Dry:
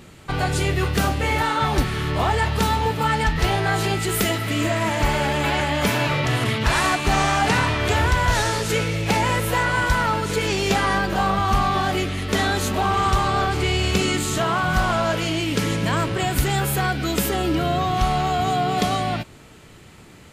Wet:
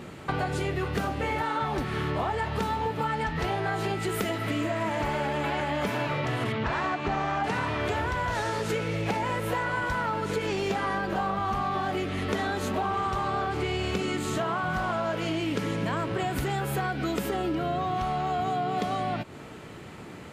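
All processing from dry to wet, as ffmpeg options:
-filter_complex "[0:a]asettb=1/sr,asplit=3[a][b][c];[a]atrim=end=6.524[d];[b]atrim=start=6.52:end=7.44,asetpts=PTS-STARTPTS,afade=t=in:d=0.004:c=qsin,afade=t=out:st=0.916:d=0.004:c=qsin,lowpass=f=8.1k:w=0.5412,lowpass=f=8.1k:w=1.3066,aemphasis=mode=reproduction:type=50fm[e];[c]atrim=start=7.436[f];[d][e]acrossfade=d=0.004:c1=hsin:c2=qsin[g];[g][f]acrossfade=d=0.004:c1=qsin:c2=hsin,highpass=f=180:p=1,highshelf=f=2.7k:g=-12,acompressor=threshold=-33dB:ratio=6,volume=6.5dB"

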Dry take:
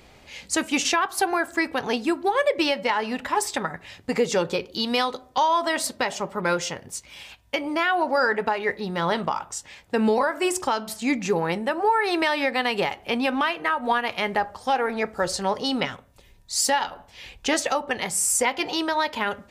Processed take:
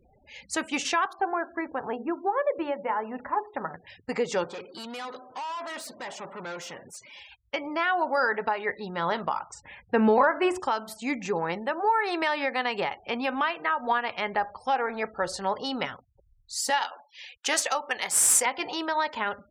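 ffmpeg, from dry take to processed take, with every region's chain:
-filter_complex "[0:a]asettb=1/sr,asplit=3[a][b][c];[a]atrim=end=1.134[d];[b]atrim=start=1.13:end=3.87,asetpts=PTS-STARTPTS,afade=t=in:d=0.004:c=qsin,afade=t=out:st=2.736:d=0.004:c=qsin,lowpass=1.3k,bandreject=f=60:t=h:w=6,bandreject=f=120:t=h:w=6,bandreject=f=180:t=h:w=6,bandreject=f=240:t=h:w=6,bandreject=f=300:t=h:w=6,bandreject=f=360:t=h:w=6,bandreject=f=420:t=h:w=6,bandreject=f=480:t=h:w=6[e];[c]atrim=start=3.866[f];[d][e]acrossfade=d=0.004:c1=hsin:c2=qsin[g];[g][f]acrossfade=d=0.004:c1=qsin:c2=hsin,asettb=1/sr,asplit=3[h][i][j];[h]atrim=end=4.444[k];[i]atrim=start=4.44:end=7.2,asetpts=PTS-STARTPTS,afade=t=in:d=0.004:c=qsin,afade=t=out:st=2.756:d=0.004:c=qsin,aeval=exprs='val(0)+0.5*0.01*sgn(val(0))':c=same,aeval=exprs='(tanh(31.6*val(0)+0.4)-tanh(0.4))/31.6':c=same,highpass=140[l];[j]atrim=start=7.196[m];[k][l]acrossfade=d=0.004:c1=hsin:c2=qsin[n];[n][m]acrossfade=d=0.004:c1=qsin:c2=hsin,asettb=1/sr,asplit=3[o][p][q];[o]atrim=end=9.544[r];[p]atrim=start=9.54:end=10.6,asetpts=PTS-STARTPTS,afade=t=in:d=0.004:c=qsin,afade=t=out:st=1.056:d=0.004:c=qsin,bass=f=250:g=3,treble=f=4k:g=-15,acontrast=29[s];[q]atrim=start=10.596[t];[r][s]acrossfade=d=0.004:c1=hsin:c2=qsin[u];[u][t]acrossfade=d=0.004:c1=qsin:c2=hsin,asettb=1/sr,asplit=3[v][w][x];[v]atrim=end=16.704[y];[w]atrim=start=16.7:end=18.46,asetpts=PTS-STARTPTS,afade=t=in:d=0.004:c=qsin,afade=t=out:st=1.756:d=0.004:c=qsin,aemphasis=mode=production:type=riaa,adynamicsmooth=sensitivity=2:basefreq=6.7k[z];[x]atrim=start=18.456[aa];[y][z]acrossfade=d=0.004:c1=hsin:c2=qsin[ab];[ab][aa]acrossfade=d=0.004:c1=qsin:c2=hsin,afftfilt=real='re*gte(hypot(re,im),0.00794)':imag='im*gte(hypot(re,im),0.00794)':win_size=1024:overlap=0.75,equalizer=f=1.1k:t=o:w=2.4:g=6,volume=-8dB"

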